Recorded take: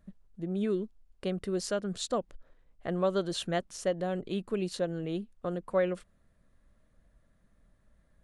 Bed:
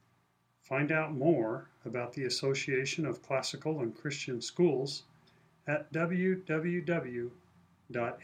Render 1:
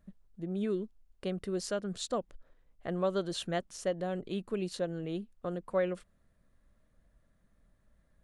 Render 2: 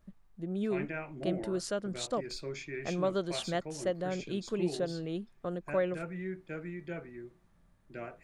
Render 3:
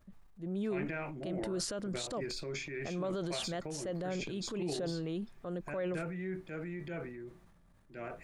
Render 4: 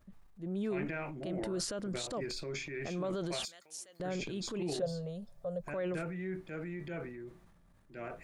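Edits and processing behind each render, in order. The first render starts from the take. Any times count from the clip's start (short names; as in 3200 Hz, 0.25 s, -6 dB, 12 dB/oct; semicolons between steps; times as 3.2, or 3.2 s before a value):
gain -2.5 dB
add bed -8.5 dB
limiter -27.5 dBFS, peak gain reduction 9.5 dB; transient shaper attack -5 dB, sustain +7 dB
3.45–4 differentiator; 4.82–5.64 EQ curve 170 Hz 0 dB, 330 Hz -24 dB, 560 Hz +10 dB, 840 Hz -5 dB, 1600 Hz -11 dB, 2400 Hz -14 dB, 4400 Hz -4 dB, 12000 Hz 0 dB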